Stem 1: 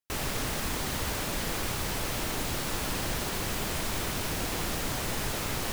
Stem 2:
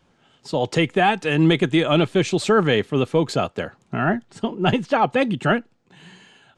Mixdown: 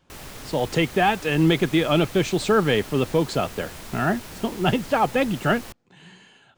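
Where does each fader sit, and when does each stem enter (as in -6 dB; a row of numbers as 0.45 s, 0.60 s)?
-7.5 dB, -2.0 dB; 0.00 s, 0.00 s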